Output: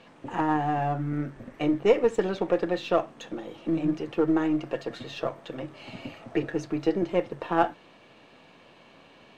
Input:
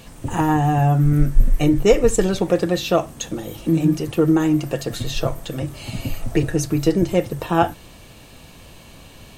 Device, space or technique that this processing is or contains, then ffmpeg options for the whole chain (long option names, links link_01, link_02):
crystal radio: -af "highpass=220,lowpass=2700,aeval=exprs='if(lt(val(0),0),0.708*val(0),val(0))':channel_layout=same,lowshelf=frequency=240:gain=-4,volume=-3.5dB"